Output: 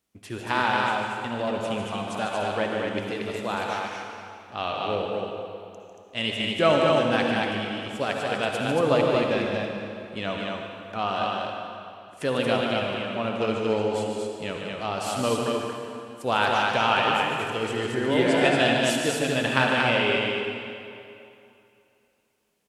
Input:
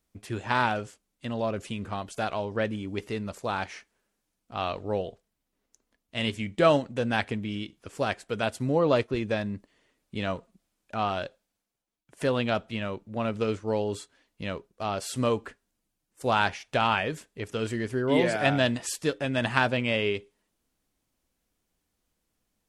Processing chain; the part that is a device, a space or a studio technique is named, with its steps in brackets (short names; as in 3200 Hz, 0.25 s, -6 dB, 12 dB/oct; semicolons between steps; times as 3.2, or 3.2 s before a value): stadium PA (HPF 150 Hz 6 dB/oct; bell 2900 Hz +3.5 dB 0.38 oct; loudspeakers at several distances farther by 51 m -7 dB, 79 m -3 dB; reverb RT60 2.7 s, pre-delay 52 ms, DRR 2.5 dB)